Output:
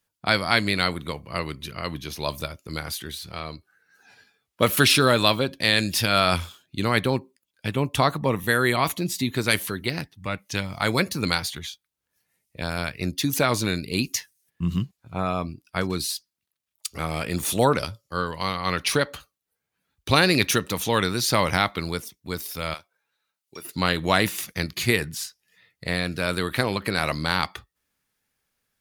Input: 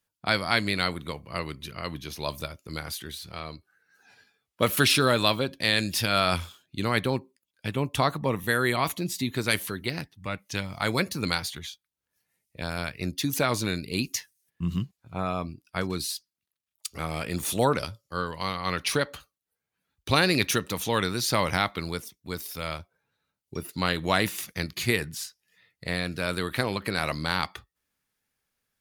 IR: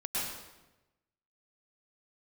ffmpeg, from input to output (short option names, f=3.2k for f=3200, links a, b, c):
-filter_complex "[0:a]asettb=1/sr,asplit=3[a][b][c];[a]atrim=end=22.744[d];[b]atrim=start=22.74:end=23.65,asetpts=PTS-STARTPTS,afade=t=in:d=0.004:c=qsin,afade=t=out:st=0.906:d=0.004:c=qsin,highpass=f=1.2k:p=1[e];[c]atrim=start=23.646[f];[d][e]acrossfade=d=0.004:c1=hsin:c2=qsin[g];[g][f]acrossfade=d=0.004:c1=qsin:c2=hsin,volume=3.5dB"